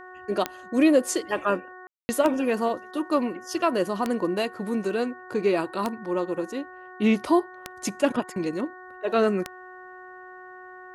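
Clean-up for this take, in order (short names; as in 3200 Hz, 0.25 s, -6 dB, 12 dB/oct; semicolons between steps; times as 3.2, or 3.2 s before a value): de-click; de-hum 368 Hz, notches 5; room tone fill 1.87–2.09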